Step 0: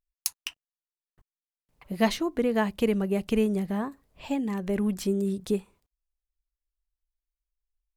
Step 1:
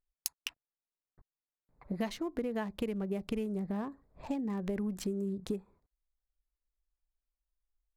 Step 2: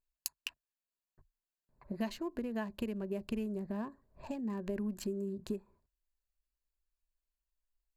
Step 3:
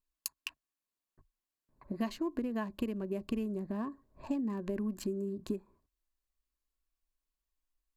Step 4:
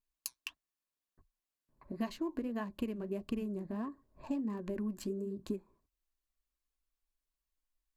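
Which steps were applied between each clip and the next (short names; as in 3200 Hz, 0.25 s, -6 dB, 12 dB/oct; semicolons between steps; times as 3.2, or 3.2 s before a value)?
Wiener smoothing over 15 samples; compressor 6:1, threshold -32 dBFS, peak gain reduction 14.5 dB
ripple EQ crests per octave 1.4, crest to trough 7 dB; gain -3.5 dB
small resonant body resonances 290/1100 Hz, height 9 dB; wow and flutter 24 cents
flange 1.5 Hz, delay 0.6 ms, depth 7.8 ms, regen -69%; gain +2 dB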